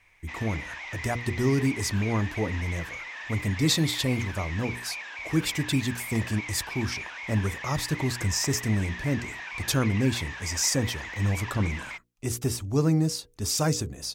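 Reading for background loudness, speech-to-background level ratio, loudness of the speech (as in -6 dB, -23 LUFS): -36.5 LUFS, 8.5 dB, -28.0 LUFS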